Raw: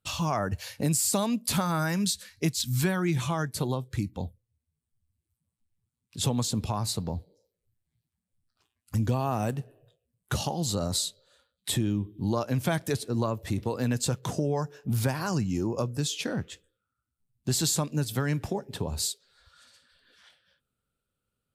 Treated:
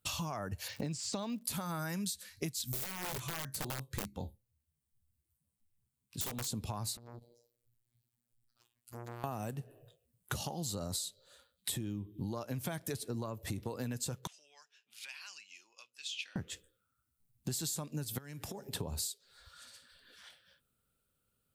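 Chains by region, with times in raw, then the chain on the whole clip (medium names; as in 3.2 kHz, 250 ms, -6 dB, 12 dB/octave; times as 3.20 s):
0.67–1.41 s: low-pass 5.8 kHz 24 dB/octave + crackle 180 per s -45 dBFS
2.72–6.47 s: feedback comb 68 Hz, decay 0.18 s, mix 70% + integer overflow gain 26 dB
6.97–9.24 s: compression 4:1, threshold -39 dBFS + robot voice 119 Hz + transformer saturation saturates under 1.5 kHz
14.27–16.36 s: dynamic bell 2.5 kHz, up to +5 dB, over -55 dBFS, Q 4 + ladder band-pass 3.3 kHz, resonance 40%
18.18–18.75 s: compression 10:1, threshold -41 dBFS + treble shelf 2.7 kHz +8 dB
whole clip: treble shelf 10 kHz +11 dB; compression 6:1, threshold -37 dBFS; trim +1 dB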